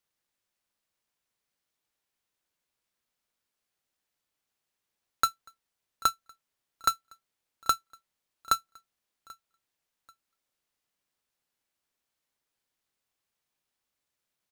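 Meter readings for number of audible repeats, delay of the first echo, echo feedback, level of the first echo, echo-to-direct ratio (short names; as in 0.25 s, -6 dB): 2, 0.787 s, 33%, -23.5 dB, -23.0 dB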